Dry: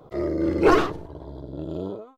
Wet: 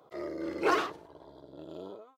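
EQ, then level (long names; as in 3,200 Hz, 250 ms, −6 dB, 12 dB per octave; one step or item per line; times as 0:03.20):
high-pass filter 820 Hz 6 dB per octave
−4.5 dB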